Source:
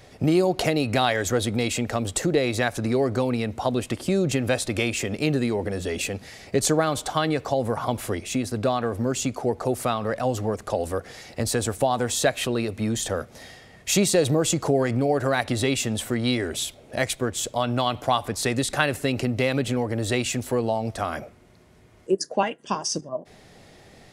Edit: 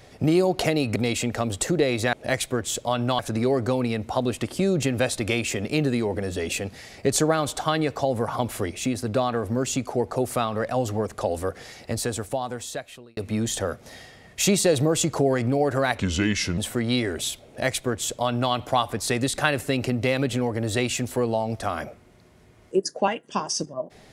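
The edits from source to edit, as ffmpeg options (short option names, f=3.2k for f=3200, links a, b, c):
-filter_complex "[0:a]asplit=7[a][b][c][d][e][f][g];[a]atrim=end=0.962[h];[b]atrim=start=1.508:end=2.682[i];[c]atrim=start=16.818:end=17.882[j];[d]atrim=start=2.678:end=12.66,asetpts=PTS-STARTPTS,afade=t=out:st=8.452:d=1.53[k];[e]atrim=start=12.66:end=15.474,asetpts=PTS-STARTPTS,afade=t=in:d=0.004:c=hsin[l];[f]atrim=start=15.47:end=15.93,asetpts=PTS-STARTPTS,asetrate=33957,aresample=44100,atrim=end_sample=26345,asetpts=PTS-STARTPTS[m];[g]atrim=start=15.926[n];[h][i]acrossfade=d=0.004:c1=hsin:c2=hsin[o];[o][j]acrossfade=d=0.004:c1=hsin:c2=hsin[p];[k][l]concat=n=2:v=0:a=1[q];[p][q]acrossfade=d=0.004:c1=hsin:c2=hsin[r];[r][m]acrossfade=d=0.004:c1=hsin:c2=hsin[s];[s][n]acrossfade=d=0.004:c1=hsin:c2=hsin"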